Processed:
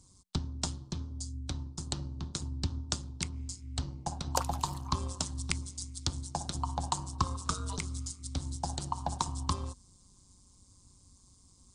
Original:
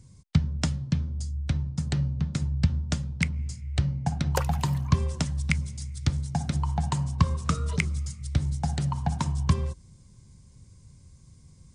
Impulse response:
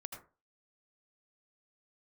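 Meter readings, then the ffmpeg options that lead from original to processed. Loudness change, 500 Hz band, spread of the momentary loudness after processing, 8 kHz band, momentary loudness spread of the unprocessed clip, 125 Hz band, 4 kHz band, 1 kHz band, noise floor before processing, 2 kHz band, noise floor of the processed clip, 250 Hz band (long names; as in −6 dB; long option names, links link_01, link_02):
−8.0 dB, −5.5 dB, 6 LU, +2.0 dB, 4 LU, −11.5 dB, 0.0 dB, −1.0 dB, −54 dBFS, −11.0 dB, −62 dBFS, −10.5 dB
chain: -af "equalizer=frequency=125:width_type=o:width=1:gain=-10,equalizer=frequency=250:width_type=o:width=1:gain=-3,equalizer=frequency=500:width_type=o:width=1:gain=-3,equalizer=frequency=1000:width_type=o:width=1:gain=9,equalizer=frequency=2000:width_type=o:width=1:gain=-11,equalizer=frequency=4000:width_type=o:width=1:gain=7,equalizer=frequency=8000:width_type=o:width=1:gain=8,tremolo=f=190:d=0.71,volume=-2.5dB"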